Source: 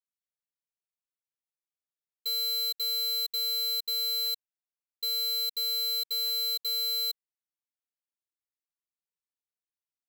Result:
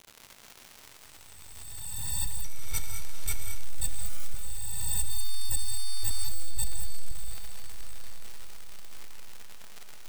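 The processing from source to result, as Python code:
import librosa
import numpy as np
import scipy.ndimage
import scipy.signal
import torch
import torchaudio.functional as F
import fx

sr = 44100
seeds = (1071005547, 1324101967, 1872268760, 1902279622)

y = fx.spec_swells(x, sr, rise_s=2.13)
y = fx.highpass(y, sr, hz=380.0, slope=12, at=(5.1, 6.29))
y = fx.dmg_crackle(y, sr, seeds[0], per_s=230.0, level_db=-40.0)
y = np.abs(y)
y = fx.echo_diffused(y, sr, ms=639, feedback_pct=48, wet_db=-10.0)
y = fx.rev_gated(y, sr, seeds[1], gate_ms=240, shape='rising', drr_db=6.0)
y = fx.resample_bad(y, sr, factor=2, down='none', up='hold', at=(2.44, 3.63))
y = y * 10.0 ** (6.5 / 20.0)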